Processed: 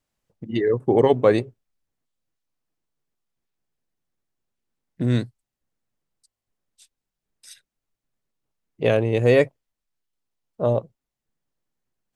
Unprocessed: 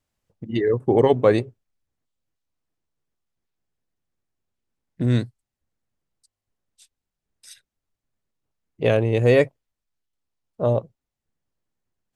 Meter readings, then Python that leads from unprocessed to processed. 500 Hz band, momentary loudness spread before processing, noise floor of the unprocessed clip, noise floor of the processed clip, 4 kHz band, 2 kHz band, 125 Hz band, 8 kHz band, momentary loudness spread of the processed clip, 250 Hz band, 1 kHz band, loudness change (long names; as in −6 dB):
0.0 dB, 10 LU, below −85 dBFS, below −85 dBFS, 0.0 dB, 0.0 dB, −2.0 dB, 0.0 dB, 10 LU, 0.0 dB, 0.0 dB, −0.5 dB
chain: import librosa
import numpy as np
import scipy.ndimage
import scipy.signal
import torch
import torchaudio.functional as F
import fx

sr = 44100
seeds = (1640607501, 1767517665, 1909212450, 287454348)

y = fx.peak_eq(x, sr, hz=77.0, db=-12.5, octaves=0.47)